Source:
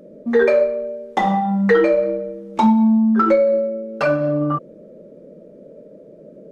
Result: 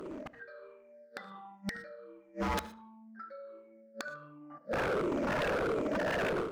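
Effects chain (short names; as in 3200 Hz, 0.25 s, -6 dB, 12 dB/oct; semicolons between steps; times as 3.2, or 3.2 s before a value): moving spectral ripple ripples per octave 0.66, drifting -1.4 Hz, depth 18 dB; bell 4700 Hz +7.5 dB 0.7 oct; reverse; compressor 8:1, threshold -20 dBFS, peak gain reduction 16.5 dB; reverse; HPF 160 Hz 6 dB/oct; bell 1500 Hz +14.5 dB 1.2 oct; flipped gate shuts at -23 dBFS, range -40 dB; wavefolder -38 dBFS; darkening echo 74 ms, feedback 33%, low-pass 4100 Hz, level -17 dB; on a send at -18.5 dB: reverb, pre-delay 3 ms; on the sum: AGC gain up to 11 dB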